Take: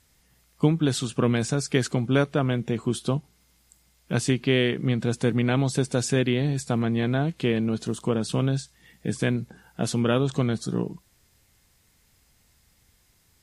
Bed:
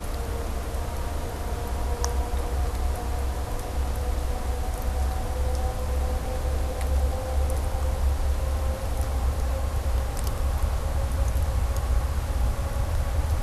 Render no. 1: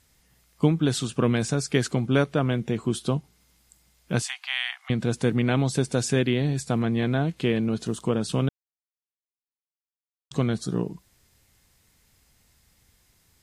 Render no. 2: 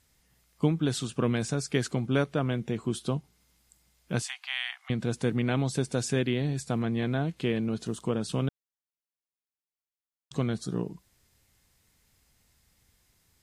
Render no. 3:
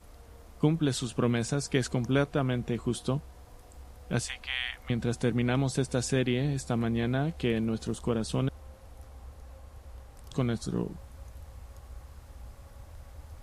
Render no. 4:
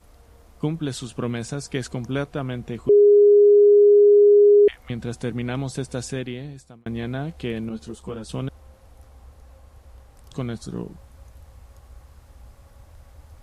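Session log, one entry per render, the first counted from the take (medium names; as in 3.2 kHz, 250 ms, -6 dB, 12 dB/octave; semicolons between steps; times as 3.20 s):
4.22–4.90 s: steep high-pass 720 Hz 96 dB/octave; 8.49–10.31 s: mute
trim -4.5 dB
add bed -21.5 dB
2.89–4.68 s: bleep 411 Hz -9.5 dBFS; 6.00–6.86 s: fade out; 7.69–8.29 s: three-phase chorus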